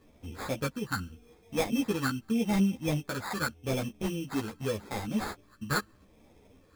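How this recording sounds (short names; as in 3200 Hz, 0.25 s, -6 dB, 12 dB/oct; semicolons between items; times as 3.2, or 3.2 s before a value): phasing stages 6, 0.83 Hz, lowest notch 650–1800 Hz; aliases and images of a low sample rate 2900 Hz, jitter 0%; a shimmering, thickened sound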